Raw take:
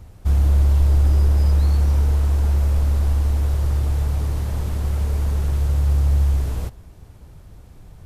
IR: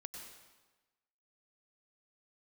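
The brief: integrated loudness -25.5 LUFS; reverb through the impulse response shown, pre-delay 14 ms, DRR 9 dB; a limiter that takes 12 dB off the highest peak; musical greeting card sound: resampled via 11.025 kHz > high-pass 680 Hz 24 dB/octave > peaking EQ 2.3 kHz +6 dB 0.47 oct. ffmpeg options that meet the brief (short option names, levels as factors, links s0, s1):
-filter_complex "[0:a]alimiter=limit=0.112:level=0:latency=1,asplit=2[s0][s1];[1:a]atrim=start_sample=2205,adelay=14[s2];[s1][s2]afir=irnorm=-1:irlink=0,volume=0.562[s3];[s0][s3]amix=inputs=2:normalize=0,aresample=11025,aresample=44100,highpass=f=680:w=0.5412,highpass=f=680:w=1.3066,equalizer=f=2300:t=o:w=0.47:g=6,volume=10"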